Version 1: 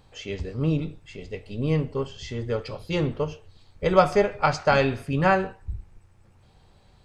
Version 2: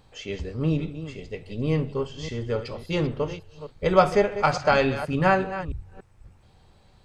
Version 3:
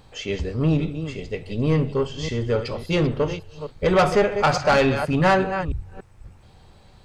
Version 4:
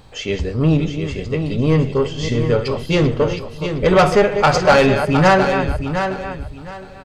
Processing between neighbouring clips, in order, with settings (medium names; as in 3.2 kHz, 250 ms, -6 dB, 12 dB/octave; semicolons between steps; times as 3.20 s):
chunks repeated in reverse 286 ms, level -12 dB; de-hum 46.55 Hz, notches 3
saturation -17.5 dBFS, distortion -11 dB; trim +6 dB
feedback delay 714 ms, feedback 23%, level -8 dB; trim +5 dB